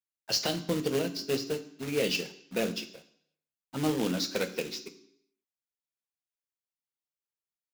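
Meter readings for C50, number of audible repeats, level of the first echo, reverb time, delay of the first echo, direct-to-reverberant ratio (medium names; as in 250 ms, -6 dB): 14.0 dB, no echo, no echo, 0.70 s, no echo, 9.0 dB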